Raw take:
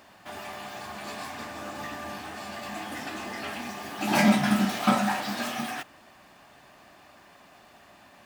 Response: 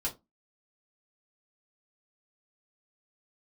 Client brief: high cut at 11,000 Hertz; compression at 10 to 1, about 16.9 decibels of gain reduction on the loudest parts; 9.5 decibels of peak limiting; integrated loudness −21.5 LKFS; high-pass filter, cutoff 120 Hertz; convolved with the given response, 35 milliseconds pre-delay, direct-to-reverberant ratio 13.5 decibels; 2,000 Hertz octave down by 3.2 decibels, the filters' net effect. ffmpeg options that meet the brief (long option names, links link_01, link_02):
-filter_complex "[0:a]highpass=120,lowpass=11000,equalizer=frequency=2000:width_type=o:gain=-4,acompressor=threshold=-34dB:ratio=10,alimiter=level_in=8.5dB:limit=-24dB:level=0:latency=1,volume=-8.5dB,asplit=2[link_01][link_02];[1:a]atrim=start_sample=2205,adelay=35[link_03];[link_02][link_03]afir=irnorm=-1:irlink=0,volume=-17dB[link_04];[link_01][link_04]amix=inputs=2:normalize=0,volume=20dB"